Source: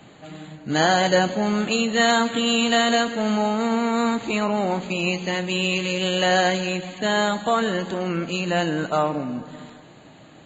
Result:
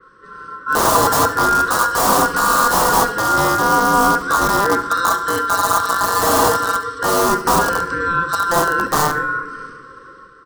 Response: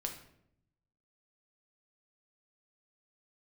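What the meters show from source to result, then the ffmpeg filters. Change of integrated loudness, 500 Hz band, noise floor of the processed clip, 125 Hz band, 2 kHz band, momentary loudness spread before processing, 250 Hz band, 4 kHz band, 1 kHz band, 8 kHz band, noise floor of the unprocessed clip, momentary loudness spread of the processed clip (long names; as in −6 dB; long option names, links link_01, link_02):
+6.0 dB, +2.5 dB, −42 dBFS, +1.0 dB, +6.0 dB, 8 LU, −2.0 dB, −1.0 dB, +10.5 dB, can't be measured, −47 dBFS, 6 LU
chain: -filter_complex "[0:a]aeval=exprs='val(0)*sin(2*PI*1200*n/s)':channel_layout=same,asuperstop=centerf=760:order=20:qfactor=1.4,aeval=exprs='(mod(10*val(0)+1,2)-1)/10':channel_layout=same,highshelf=frequency=1600:width_type=q:width=3:gain=-12.5,aecho=1:1:71:0.15,dynaudnorm=framelen=100:gausssize=9:maxgain=8.5dB,bandreject=frequency=419.3:width_type=h:width=4,bandreject=frequency=838.6:width_type=h:width=4,bandreject=frequency=1257.9:width_type=h:width=4,bandreject=frequency=1677.2:width_type=h:width=4,bandreject=frequency=2096.5:width_type=h:width=4,bandreject=frequency=2515.8:width_type=h:width=4,bandreject=frequency=2935.1:width_type=h:width=4,bandreject=frequency=3354.4:width_type=h:width=4,bandreject=frequency=3773.7:width_type=h:width=4,bandreject=frequency=4193:width_type=h:width=4,bandreject=frequency=4612.3:width_type=h:width=4,bandreject=frequency=5031.6:width_type=h:width=4,bandreject=frequency=5450.9:width_type=h:width=4,bandreject=frequency=5870.2:width_type=h:width=4,bandreject=frequency=6289.5:width_type=h:width=4,bandreject=frequency=6708.8:width_type=h:width=4,bandreject=frequency=7128.1:width_type=h:width=4,bandreject=frequency=7547.4:width_type=h:width=4,bandreject=frequency=7966.7:width_type=h:width=4,bandreject=frequency=8386:width_type=h:width=4,bandreject=frequency=8805.3:width_type=h:width=4,bandreject=frequency=9224.6:width_type=h:width=4,bandreject=frequency=9643.9:width_type=h:width=4,bandreject=frequency=10063.2:width_type=h:width=4,bandreject=frequency=10482.5:width_type=h:width=4,bandreject=frequency=10901.8:width_type=h:width=4,bandreject=frequency=11321.1:width_type=h:width=4,bandreject=frequency=11740.4:width_type=h:width=4,asplit=2[link_01][link_02];[link_02]highpass=81[link_03];[1:a]atrim=start_sample=2205[link_04];[link_03][link_04]afir=irnorm=-1:irlink=0,volume=-6dB[link_05];[link_01][link_05]amix=inputs=2:normalize=0,adynamicequalizer=threshold=0.0178:dfrequency=4000:dqfactor=0.7:tfrequency=4000:tqfactor=0.7:attack=5:release=100:ratio=0.375:range=3:mode=boostabove:tftype=highshelf,volume=2dB"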